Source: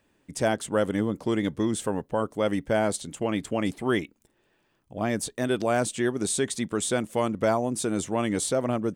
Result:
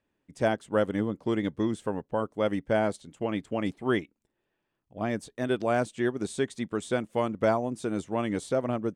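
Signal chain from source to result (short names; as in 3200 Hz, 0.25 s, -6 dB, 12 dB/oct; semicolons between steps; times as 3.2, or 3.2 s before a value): high shelf 6600 Hz -12 dB; upward expander 1.5:1, over -42 dBFS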